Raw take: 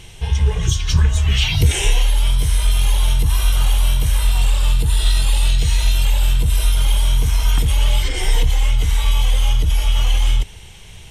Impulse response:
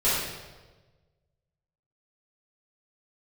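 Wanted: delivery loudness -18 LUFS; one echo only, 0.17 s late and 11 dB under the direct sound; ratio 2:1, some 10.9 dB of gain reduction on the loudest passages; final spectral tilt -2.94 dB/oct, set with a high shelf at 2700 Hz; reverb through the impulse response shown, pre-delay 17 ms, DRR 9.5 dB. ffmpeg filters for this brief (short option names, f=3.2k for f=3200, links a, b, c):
-filter_complex "[0:a]highshelf=f=2.7k:g=7,acompressor=threshold=-31dB:ratio=2,aecho=1:1:170:0.282,asplit=2[a][b];[1:a]atrim=start_sample=2205,adelay=17[c];[b][c]afir=irnorm=-1:irlink=0,volume=-23.5dB[d];[a][d]amix=inputs=2:normalize=0,volume=9dB"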